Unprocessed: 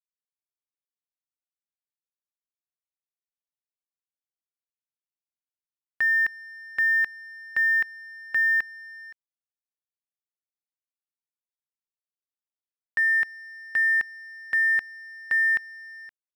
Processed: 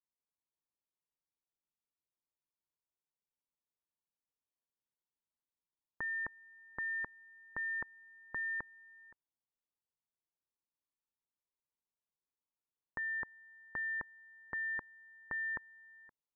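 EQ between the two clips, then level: ladder low-pass 1000 Hz, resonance 65%; air absorption 470 m; bell 770 Hz -12.5 dB 0.77 oct; +13.5 dB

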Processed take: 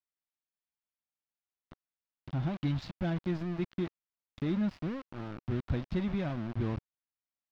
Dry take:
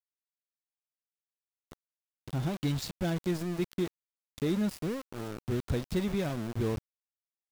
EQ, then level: air absorption 250 m; bell 440 Hz -10 dB 0.4 oct; 0.0 dB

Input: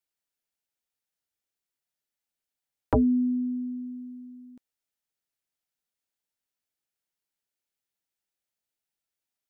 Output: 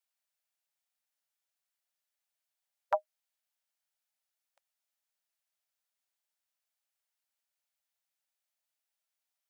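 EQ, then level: brick-wall FIR high-pass 540 Hz; 0.0 dB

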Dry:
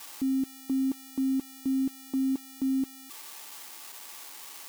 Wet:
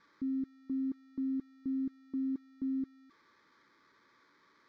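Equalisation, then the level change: tape spacing loss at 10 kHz 35 dB; high shelf 4700 Hz -8.5 dB; fixed phaser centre 2800 Hz, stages 6; -4.5 dB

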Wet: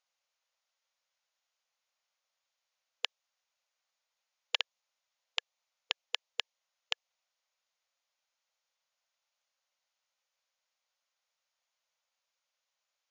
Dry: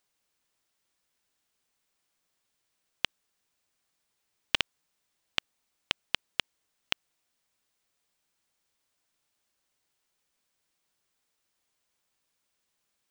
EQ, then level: notch 1700 Hz, Q 20; dynamic EQ 1500 Hz, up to -6 dB, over -55 dBFS, Q 2.3; brick-wall FIR band-pass 480–7100 Hz; -3.5 dB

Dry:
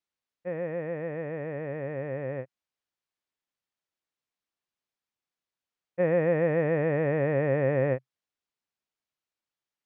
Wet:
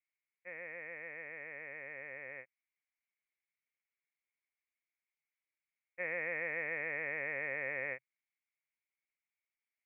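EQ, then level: band-pass 2200 Hz, Q 10; air absorption 430 m; +14.5 dB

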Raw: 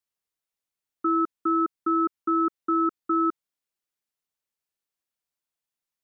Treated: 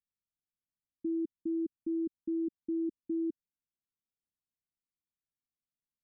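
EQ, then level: inverse Chebyshev low-pass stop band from 1300 Hz, stop band 70 dB; air absorption 370 m; 0.0 dB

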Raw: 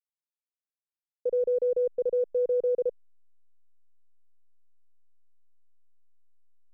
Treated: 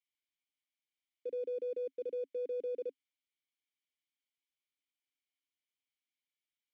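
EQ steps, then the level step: vowel filter i; tilt +3 dB/oct; bell 190 Hz -12.5 dB 0.49 oct; +14.0 dB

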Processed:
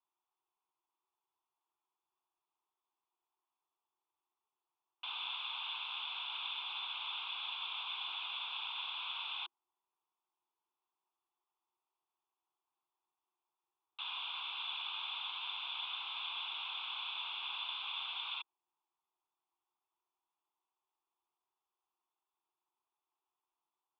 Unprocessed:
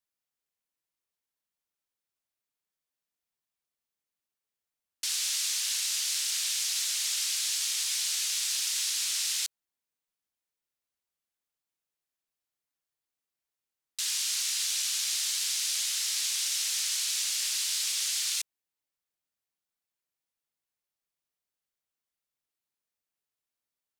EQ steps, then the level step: rippled Chebyshev high-pass 250 Hz, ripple 9 dB; rippled Chebyshev low-pass 3600 Hz, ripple 6 dB; fixed phaser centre 370 Hz, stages 8; +13.5 dB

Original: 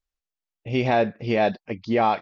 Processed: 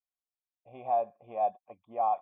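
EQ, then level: vocal tract filter a; synth low-pass 3300 Hz, resonance Q 6.9; bell 560 Hz +8 dB 0.23 oct; -2.0 dB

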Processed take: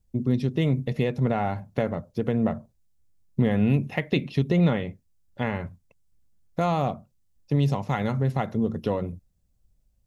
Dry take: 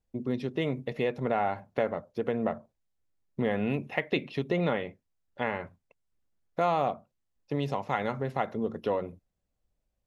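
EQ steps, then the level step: tone controls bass +14 dB, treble +9 dB; 0.0 dB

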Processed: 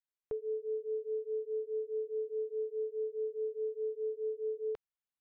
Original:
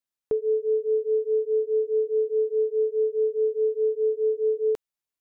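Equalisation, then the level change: air absorption 250 m; bell 270 Hz -10 dB 2.1 oct; -5.0 dB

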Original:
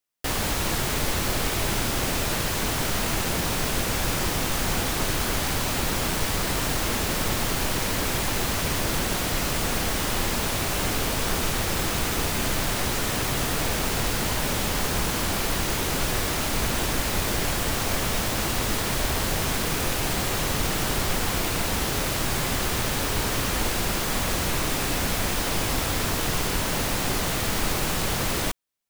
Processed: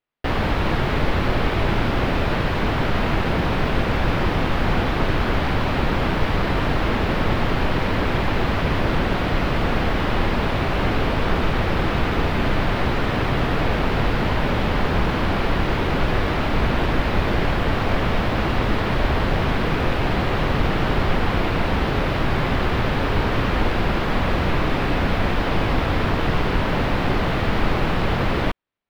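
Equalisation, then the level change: air absorption 380 m; +7.5 dB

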